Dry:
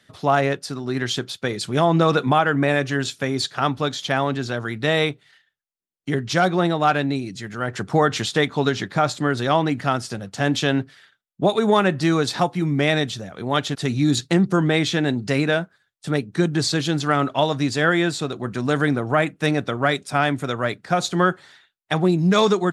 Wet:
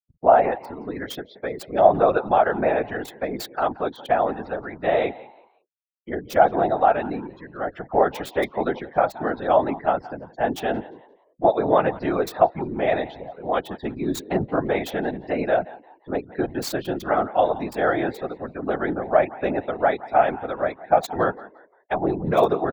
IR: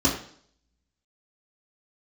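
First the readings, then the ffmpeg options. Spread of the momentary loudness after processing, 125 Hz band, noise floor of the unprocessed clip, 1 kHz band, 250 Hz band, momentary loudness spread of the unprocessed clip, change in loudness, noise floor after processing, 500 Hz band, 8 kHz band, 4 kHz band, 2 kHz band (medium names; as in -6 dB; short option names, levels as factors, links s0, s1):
13 LU, -12.0 dB, -69 dBFS, +1.5 dB, -6.5 dB, 9 LU, -2.0 dB, -61 dBFS, +1.5 dB, -11.0 dB, -13.5 dB, -6.5 dB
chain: -filter_complex "[0:a]afftfilt=real='re*gte(hypot(re,im),0.0355)':imag='im*gte(hypot(re,im),0.0355)':win_size=1024:overlap=0.75,equalizer=f=690:t=o:w=0.38:g=11.5,asplit=4[s0][s1][s2][s3];[s1]adelay=175,afreqshift=92,volume=0.112[s4];[s2]adelay=350,afreqshift=184,volume=0.0335[s5];[s3]adelay=525,afreqshift=276,volume=0.0101[s6];[s0][s4][s5][s6]amix=inputs=4:normalize=0,acrossover=split=170|3600[s7][s8][s9];[s9]acrusher=bits=3:mix=0:aa=0.000001[s10];[s7][s8][s10]amix=inputs=3:normalize=0,equalizer=f=125:t=o:w=1:g=-9,equalizer=f=500:t=o:w=1:g=4,equalizer=f=4000:t=o:w=1:g=-4,afftfilt=real='hypot(re,im)*cos(2*PI*random(0))':imag='hypot(re,im)*sin(2*PI*random(1))':win_size=512:overlap=0.75"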